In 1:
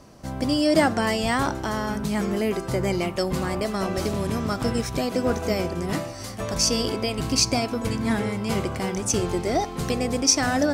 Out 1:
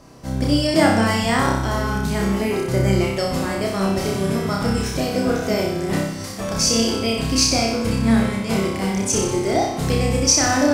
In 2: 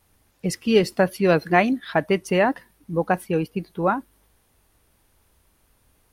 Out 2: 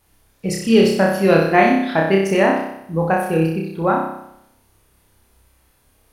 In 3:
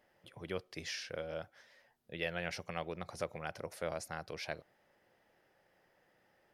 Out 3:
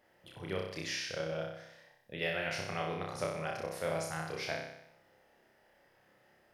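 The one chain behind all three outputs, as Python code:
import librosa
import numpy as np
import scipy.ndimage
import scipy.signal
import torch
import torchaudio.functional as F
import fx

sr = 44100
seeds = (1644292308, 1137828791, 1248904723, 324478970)

y = fx.room_flutter(x, sr, wall_m=5.3, rt60_s=0.77)
y = y * librosa.db_to_amplitude(1.0)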